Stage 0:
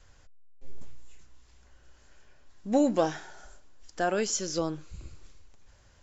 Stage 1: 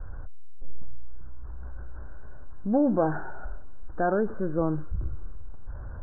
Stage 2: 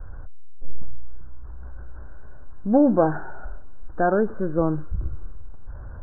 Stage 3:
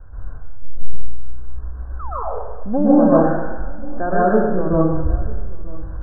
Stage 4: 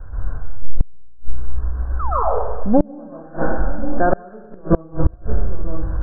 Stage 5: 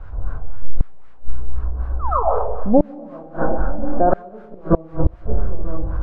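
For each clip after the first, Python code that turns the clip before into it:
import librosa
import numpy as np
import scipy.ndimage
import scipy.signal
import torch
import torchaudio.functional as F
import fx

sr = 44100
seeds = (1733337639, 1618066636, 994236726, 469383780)

y1 = scipy.signal.sosfilt(scipy.signal.butter(16, 1600.0, 'lowpass', fs=sr, output='sos'), x)
y1 = fx.low_shelf(y1, sr, hz=130.0, db=10.5)
y1 = fx.env_flatten(y1, sr, amount_pct=50)
y1 = y1 * 10.0 ** (-2.5 / 20.0)
y2 = fx.upward_expand(y1, sr, threshold_db=-31.0, expansion=1.5)
y2 = y2 * 10.0 ** (7.0 / 20.0)
y3 = fx.spec_paint(y2, sr, seeds[0], shape='fall', start_s=1.99, length_s=0.24, low_hz=410.0, high_hz=1400.0, level_db=-30.0)
y3 = y3 + 10.0 ** (-21.0 / 20.0) * np.pad(y3, (int(938 * sr / 1000.0), 0))[:len(y3)]
y3 = fx.rev_plate(y3, sr, seeds[1], rt60_s=1.1, hf_ratio=0.9, predelay_ms=110, drr_db=-8.5)
y3 = y3 * 10.0 ** (-3.5 / 20.0)
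y4 = fx.gate_flip(y3, sr, shuts_db=-8.0, range_db=-30)
y4 = y4 * 10.0 ** (6.5 / 20.0)
y5 = fx.quant_dither(y4, sr, seeds[2], bits=8, dither='triangular')
y5 = fx.filter_lfo_lowpass(y5, sr, shape='sine', hz=3.9, low_hz=670.0, high_hz=1500.0, q=1.4)
y5 = y5 * 10.0 ** (-1.0 / 20.0)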